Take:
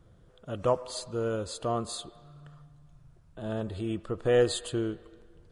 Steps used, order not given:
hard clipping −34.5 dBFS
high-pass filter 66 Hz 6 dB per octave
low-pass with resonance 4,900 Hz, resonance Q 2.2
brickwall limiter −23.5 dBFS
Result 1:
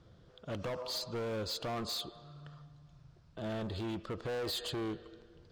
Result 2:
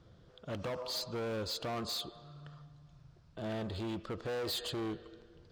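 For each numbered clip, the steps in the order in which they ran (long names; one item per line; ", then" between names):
low-pass with resonance, then brickwall limiter, then high-pass filter, then hard clipping
brickwall limiter, then low-pass with resonance, then hard clipping, then high-pass filter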